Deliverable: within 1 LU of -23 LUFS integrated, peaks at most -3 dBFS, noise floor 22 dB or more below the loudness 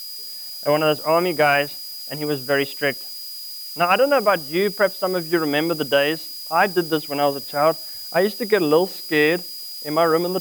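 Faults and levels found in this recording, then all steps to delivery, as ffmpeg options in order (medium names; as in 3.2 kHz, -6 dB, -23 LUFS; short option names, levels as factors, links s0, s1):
steady tone 4.9 kHz; tone level -33 dBFS; noise floor -34 dBFS; noise floor target -43 dBFS; loudness -21.0 LUFS; peak level -4.5 dBFS; loudness target -23.0 LUFS
-> -af "bandreject=f=4900:w=30"
-af "afftdn=nr=9:nf=-34"
-af "volume=0.794"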